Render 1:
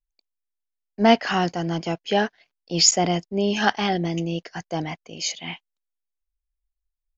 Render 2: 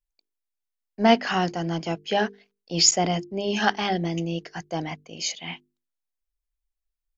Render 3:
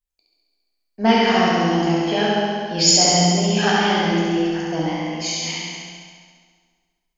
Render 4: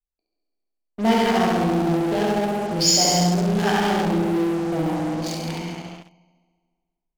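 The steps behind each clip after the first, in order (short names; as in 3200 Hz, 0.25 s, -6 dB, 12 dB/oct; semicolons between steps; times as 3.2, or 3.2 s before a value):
notches 50/100/150/200/250/300/350/400/450 Hz; gain -1.5 dB
on a send: flutter echo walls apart 11.7 m, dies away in 1.4 s; on the sum: plate-style reverb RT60 1.7 s, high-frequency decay 0.85×, DRR -3 dB; gain -1 dB
Wiener smoothing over 25 samples; in parallel at -10.5 dB: fuzz box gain 39 dB, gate -43 dBFS; on the sum: gain -4.5 dB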